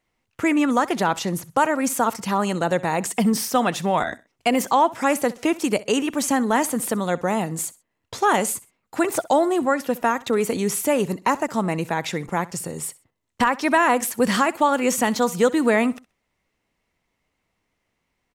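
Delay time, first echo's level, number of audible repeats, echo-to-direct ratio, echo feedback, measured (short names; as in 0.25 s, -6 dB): 64 ms, -20.0 dB, 2, -19.5 dB, 29%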